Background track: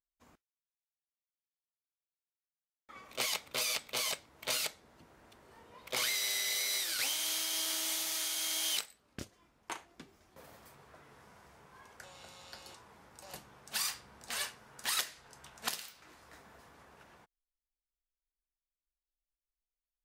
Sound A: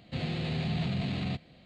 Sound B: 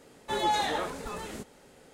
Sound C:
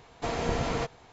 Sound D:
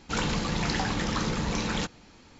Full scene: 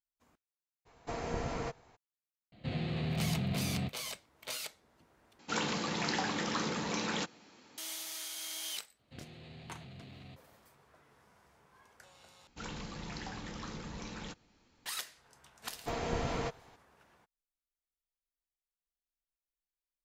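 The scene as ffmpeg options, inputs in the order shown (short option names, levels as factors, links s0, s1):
-filter_complex "[3:a]asplit=2[s0][s1];[1:a]asplit=2[s2][s3];[4:a]asplit=2[s4][s5];[0:a]volume=0.473[s6];[s0]equalizer=f=3400:t=o:w=0.58:g=-5[s7];[s2]highshelf=f=4100:g=-7.5[s8];[s4]highpass=210[s9];[s3]equalizer=f=180:w=5.2:g=-10.5[s10];[s1]acontrast=52[s11];[s6]asplit=3[s12][s13][s14];[s12]atrim=end=5.394[s15];[s9]atrim=end=2.39,asetpts=PTS-STARTPTS,volume=0.631[s16];[s13]atrim=start=7.776:end=12.474[s17];[s5]atrim=end=2.39,asetpts=PTS-STARTPTS,volume=0.178[s18];[s14]atrim=start=14.856[s19];[s7]atrim=end=1.12,asetpts=PTS-STARTPTS,volume=0.422,afade=t=in:d=0.02,afade=t=out:st=1.1:d=0.02,adelay=850[s20];[s8]atrim=end=1.65,asetpts=PTS-STARTPTS,volume=0.75,afade=t=in:d=0.004:c=hsin,afade=t=out:st=1.646:d=0.004:c=hsin,adelay=2520[s21];[s10]atrim=end=1.65,asetpts=PTS-STARTPTS,volume=0.141,afade=t=in:d=0.004:c=hsin,afade=t=out:st=1.646:d=0.004:c=hsin,adelay=8990[s22];[s11]atrim=end=1.12,asetpts=PTS-STARTPTS,volume=0.266,afade=t=in:d=0.004:c=hsin,afade=t=out:st=1.116:d=0.004:c=hsin,adelay=15640[s23];[s15][s16]acrossfade=d=0.004:c1=hsin:c2=hsin[s24];[s24][s17]acrossfade=d=0.004:c1=hsin:c2=hsin[s25];[s25][s18]acrossfade=d=0.004:c1=hsin:c2=hsin[s26];[s26][s19]acrossfade=d=0.004:c1=hsin:c2=hsin[s27];[s27][s20][s21][s22][s23]amix=inputs=5:normalize=0"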